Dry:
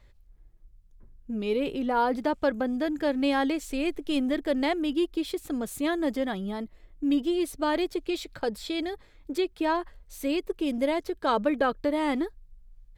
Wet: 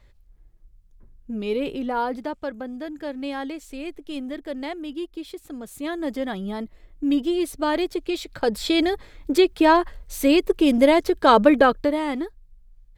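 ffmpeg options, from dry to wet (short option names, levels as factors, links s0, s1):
-af "volume=7.5,afade=t=out:st=1.7:d=0.73:silence=0.446684,afade=t=in:st=5.63:d=0.95:silence=0.375837,afade=t=in:st=8.3:d=0.4:silence=0.446684,afade=t=out:st=11.52:d=0.53:silence=0.316228"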